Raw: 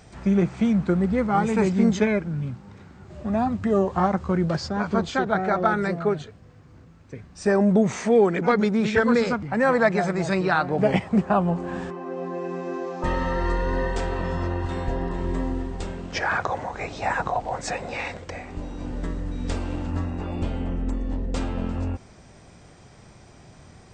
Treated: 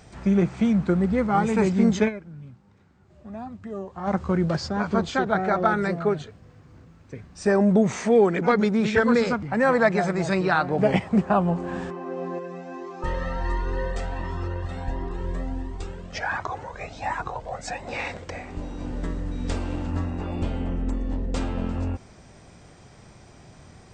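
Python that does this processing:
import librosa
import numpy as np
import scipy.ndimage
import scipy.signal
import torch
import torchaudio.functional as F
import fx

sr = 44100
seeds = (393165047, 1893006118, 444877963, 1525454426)

y = fx.comb_cascade(x, sr, direction='rising', hz=1.4, at=(12.38, 17.86), fade=0.02)
y = fx.edit(y, sr, fx.fade_down_up(start_s=2.08, length_s=2.0, db=-13.0, fade_s=0.14, curve='exp'), tone=tone)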